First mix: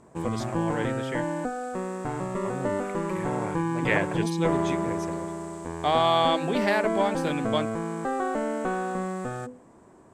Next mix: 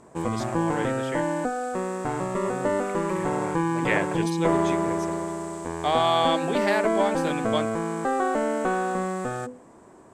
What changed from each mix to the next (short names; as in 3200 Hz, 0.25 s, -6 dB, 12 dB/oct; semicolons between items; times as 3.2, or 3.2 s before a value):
background +4.0 dB; master: add tone controls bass -4 dB, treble +1 dB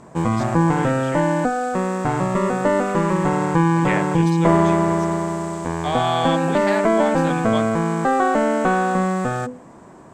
background +7.5 dB; master: add fifteen-band EQ 160 Hz +5 dB, 400 Hz -4 dB, 10000 Hz -8 dB